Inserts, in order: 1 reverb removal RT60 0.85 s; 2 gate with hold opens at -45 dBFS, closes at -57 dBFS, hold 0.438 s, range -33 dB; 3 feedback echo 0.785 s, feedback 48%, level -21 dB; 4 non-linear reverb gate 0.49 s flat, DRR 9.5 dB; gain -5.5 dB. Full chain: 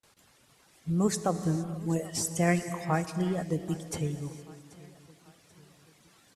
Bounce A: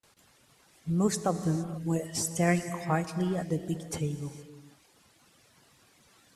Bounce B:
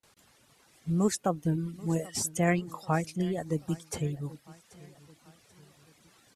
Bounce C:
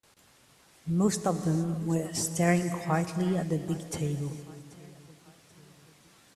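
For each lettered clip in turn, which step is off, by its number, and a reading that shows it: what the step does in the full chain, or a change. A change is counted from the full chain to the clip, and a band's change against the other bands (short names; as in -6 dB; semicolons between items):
3, momentary loudness spread change -5 LU; 4, momentary loudness spread change -5 LU; 1, momentary loudness spread change -2 LU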